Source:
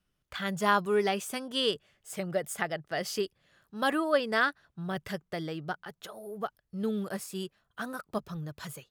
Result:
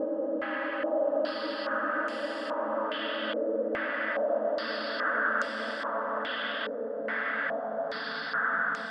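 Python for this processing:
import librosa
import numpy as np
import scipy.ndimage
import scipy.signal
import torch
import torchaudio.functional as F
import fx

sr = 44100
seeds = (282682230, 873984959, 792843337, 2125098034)

y = fx.paulstretch(x, sr, seeds[0], factor=16.0, window_s=1.0, from_s=4.0)
y = fx.filter_held_lowpass(y, sr, hz=2.4, low_hz=470.0, high_hz=6800.0)
y = y * 10.0 ** (-7.0 / 20.0)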